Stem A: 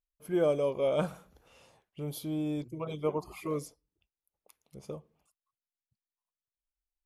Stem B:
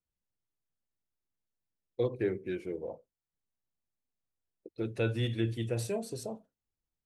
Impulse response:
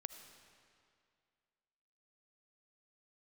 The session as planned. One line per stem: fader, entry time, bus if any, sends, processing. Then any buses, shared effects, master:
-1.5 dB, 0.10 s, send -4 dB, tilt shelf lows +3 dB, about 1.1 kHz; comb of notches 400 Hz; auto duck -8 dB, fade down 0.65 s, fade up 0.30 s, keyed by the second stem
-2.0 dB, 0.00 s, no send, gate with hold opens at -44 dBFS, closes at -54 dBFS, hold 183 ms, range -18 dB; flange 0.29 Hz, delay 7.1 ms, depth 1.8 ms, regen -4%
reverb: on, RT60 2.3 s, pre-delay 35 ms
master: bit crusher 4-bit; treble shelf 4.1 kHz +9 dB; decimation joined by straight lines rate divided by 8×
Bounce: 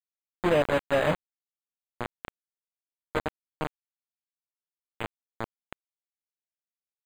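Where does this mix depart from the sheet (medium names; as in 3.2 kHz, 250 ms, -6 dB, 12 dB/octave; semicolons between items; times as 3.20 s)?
stem B: missing flange 0.29 Hz, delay 7.1 ms, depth 1.8 ms, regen -4%; master: missing treble shelf 4.1 kHz +9 dB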